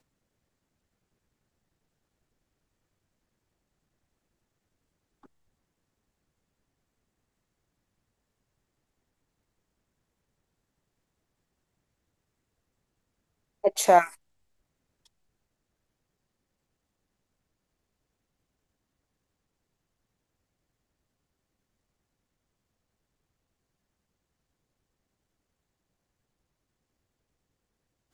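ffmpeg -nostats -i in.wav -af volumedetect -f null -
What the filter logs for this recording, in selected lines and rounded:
mean_volume: -38.4 dB
max_volume: -5.6 dB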